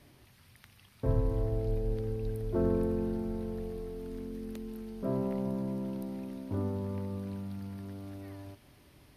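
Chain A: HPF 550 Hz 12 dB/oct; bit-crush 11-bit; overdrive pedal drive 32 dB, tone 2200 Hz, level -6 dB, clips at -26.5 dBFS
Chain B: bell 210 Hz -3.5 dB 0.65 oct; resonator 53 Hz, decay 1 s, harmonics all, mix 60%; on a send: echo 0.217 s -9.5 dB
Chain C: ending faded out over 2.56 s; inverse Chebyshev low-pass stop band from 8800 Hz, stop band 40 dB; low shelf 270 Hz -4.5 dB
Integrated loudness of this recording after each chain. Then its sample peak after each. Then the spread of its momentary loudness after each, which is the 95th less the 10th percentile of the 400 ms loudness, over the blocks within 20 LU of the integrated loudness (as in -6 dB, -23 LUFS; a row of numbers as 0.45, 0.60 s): -35.5, -42.5, -37.5 LUFS; -27.0, -22.5, -19.0 dBFS; 9, 14, 14 LU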